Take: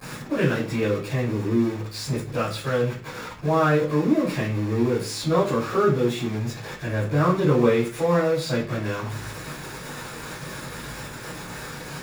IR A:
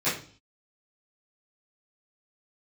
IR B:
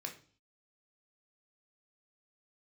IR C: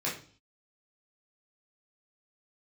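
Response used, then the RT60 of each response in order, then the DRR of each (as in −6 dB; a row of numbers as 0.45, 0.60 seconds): A; 0.45, 0.45, 0.45 seconds; −14.0, 3.0, −6.0 decibels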